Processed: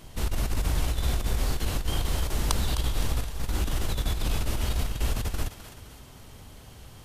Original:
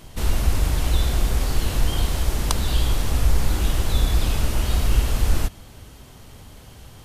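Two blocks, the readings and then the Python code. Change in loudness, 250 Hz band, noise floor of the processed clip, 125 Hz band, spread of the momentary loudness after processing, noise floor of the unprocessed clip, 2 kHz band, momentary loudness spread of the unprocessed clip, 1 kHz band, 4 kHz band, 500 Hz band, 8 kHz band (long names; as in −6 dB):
−6.5 dB, −5.5 dB, −48 dBFS, −6.5 dB, 19 LU, −45 dBFS, −5.0 dB, 3 LU, −5.0 dB, −5.0 dB, −5.0 dB, −5.0 dB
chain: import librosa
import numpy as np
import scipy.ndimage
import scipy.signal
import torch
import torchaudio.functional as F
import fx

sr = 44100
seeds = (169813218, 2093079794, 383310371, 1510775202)

p1 = fx.over_compress(x, sr, threshold_db=-19.0, ratio=-0.5)
p2 = p1 + fx.echo_thinned(p1, sr, ms=258, feedback_pct=46, hz=420.0, wet_db=-10.0, dry=0)
y = p2 * 10.0 ** (-5.5 / 20.0)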